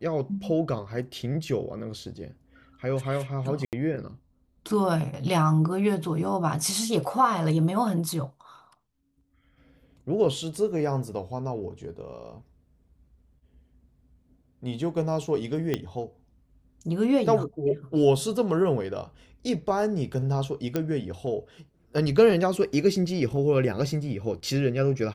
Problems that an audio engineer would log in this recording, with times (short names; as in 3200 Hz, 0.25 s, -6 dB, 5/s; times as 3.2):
3.65–3.73 gap 78 ms
15.74 pop -13 dBFS
20.76 pop -13 dBFS